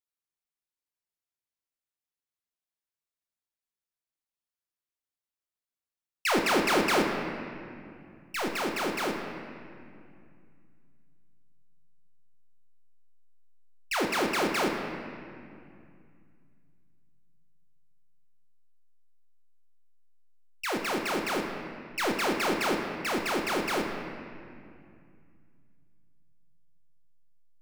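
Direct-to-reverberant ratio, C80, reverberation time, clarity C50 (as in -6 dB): 2.0 dB, 5.0 dB, 2.4 s, 4.0 dB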